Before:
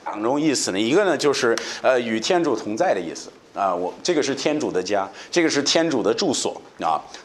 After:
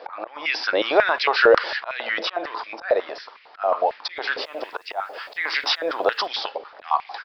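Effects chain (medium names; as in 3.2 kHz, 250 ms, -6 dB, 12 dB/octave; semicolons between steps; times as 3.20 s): resampled via 11.025 kHz; slow attack 232 ms; 4.41–6.26 s: word length cut 10-bit, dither none; step-sequenced high-pass 11 Hz 540–2200 Hz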